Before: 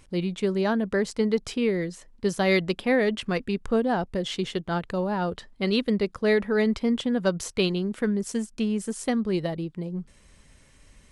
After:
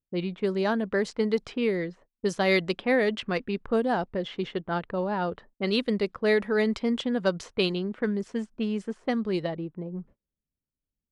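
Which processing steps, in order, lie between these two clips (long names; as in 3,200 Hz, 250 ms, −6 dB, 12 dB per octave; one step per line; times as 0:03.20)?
noise gate −45 dBFS, range −29 dB
low-pass that shuts in the quiet parts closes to 310 Hz, open at −19.5 dBFS
low-shelf EQ 160 Hz −8.5 dB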